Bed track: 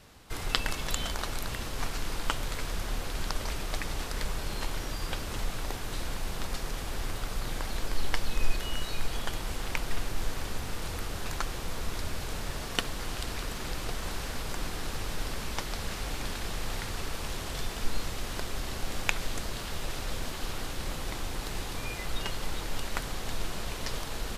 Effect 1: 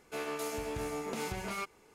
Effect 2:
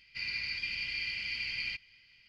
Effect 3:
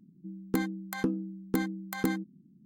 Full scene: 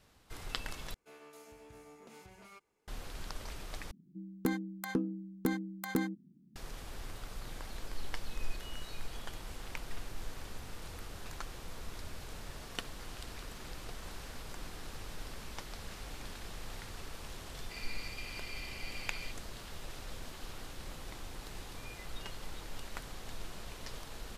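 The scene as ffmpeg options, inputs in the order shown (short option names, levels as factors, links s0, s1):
-filter_complex "[0:a]volume=0.299,asplit=3[s0][s1][s2];[s0]atrim=end=0.944[s3];[1:a]atrim=end=1.94,asetpts=PTS-STARTPTS,volume=0.133[s4];[s1]atrim=start=2.876:end=3.914[s5];[3:a]atrim=end=2.65,asetpts=PTS-STARTPTS,volume=0.668[s6];[s2]atrim=start=6.556[s7];[2:a]atrim=end=2.28,asetpts=PTS-STARTPTS,volume=0.299,afade=t=in:d=0.004:c=hsin,afade=t=out:st=2.276:d=0.004:c=hsin,adelay=17550[s8];[s3][s4]acrossfade=d=0.004:c1=hsin:c2=hsin[s9];[s9][s5]acrossfade=d=0.004:c1=hsin:c2=hsin[s10];[s10][s6]acrossfade=d=0.004:c1=hsin:c2=hsin[s11];[s11][s7]acrossfade=d=0.004:c1=hsin:c2=hsin[s12];[s12][s8]amix=inputs=2:normalize=0"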